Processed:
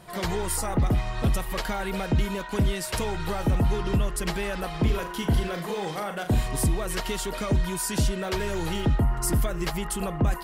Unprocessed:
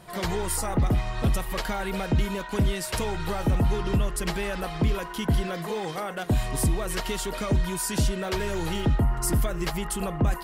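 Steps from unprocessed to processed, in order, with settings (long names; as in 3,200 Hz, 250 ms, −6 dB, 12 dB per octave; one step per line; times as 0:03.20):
0:04.70–0:06.48: flutter between parallel walls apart 6.8 metres, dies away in 0.28 s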